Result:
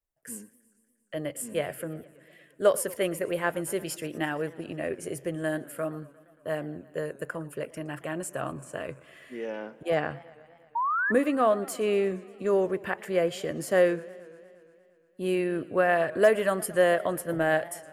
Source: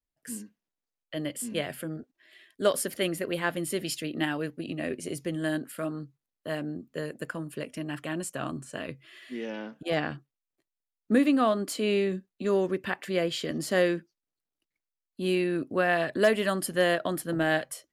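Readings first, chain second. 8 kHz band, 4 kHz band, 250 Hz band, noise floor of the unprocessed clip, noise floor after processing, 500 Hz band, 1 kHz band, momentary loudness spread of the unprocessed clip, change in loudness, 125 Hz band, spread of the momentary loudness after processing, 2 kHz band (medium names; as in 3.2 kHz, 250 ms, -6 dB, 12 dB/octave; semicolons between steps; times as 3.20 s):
0.0 dB, -6.0 dB, -3.0 dB, under -85 dBFS, -65 dBFS, +3.0 dB, +3.0 dB, 13 LU, +1.0 dB, -1.5 dB, 14 LU, +0.5 dB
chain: ten-band graphic EQ 250 Hz -8 dB, 500 Hz +4 dB, 4 kHz -12 dB; painted sound rise, 10.75–11.12 s, 900–1800 Hz -28 dBFS; modulated delay 117 ms, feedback 73%, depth 169 cents, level -21.5 dB; trim +1.5 dB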